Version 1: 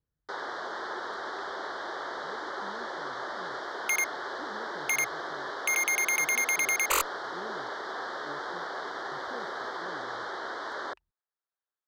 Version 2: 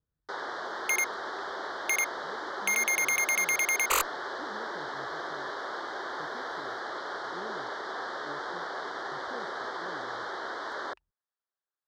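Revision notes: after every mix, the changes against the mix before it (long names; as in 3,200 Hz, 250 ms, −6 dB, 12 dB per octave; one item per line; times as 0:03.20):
second sound: entry −3.00 s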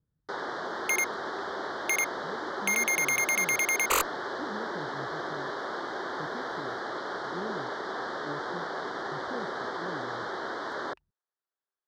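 master: add parametric band 160 Hz +10.5 dB 2.3 octaves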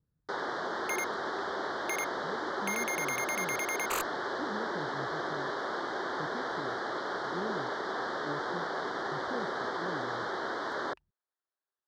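second sound −8.5 dB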